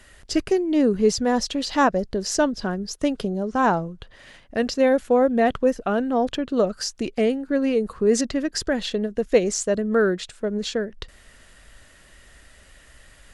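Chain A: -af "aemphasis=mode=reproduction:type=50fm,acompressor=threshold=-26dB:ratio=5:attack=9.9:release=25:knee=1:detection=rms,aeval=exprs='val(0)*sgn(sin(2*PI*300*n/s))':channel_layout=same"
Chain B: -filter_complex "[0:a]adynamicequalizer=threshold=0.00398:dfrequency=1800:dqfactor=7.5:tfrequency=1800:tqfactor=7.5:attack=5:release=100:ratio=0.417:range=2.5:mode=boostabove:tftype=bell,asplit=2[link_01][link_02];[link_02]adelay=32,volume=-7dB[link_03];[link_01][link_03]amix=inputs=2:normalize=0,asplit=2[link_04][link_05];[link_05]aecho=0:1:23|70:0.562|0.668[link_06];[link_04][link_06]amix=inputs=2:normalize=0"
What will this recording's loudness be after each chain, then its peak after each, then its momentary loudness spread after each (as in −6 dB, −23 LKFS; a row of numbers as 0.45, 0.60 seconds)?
−29.0, −19.5 LKFS; −15.5, −2.5 dBFS; 8, 8 LU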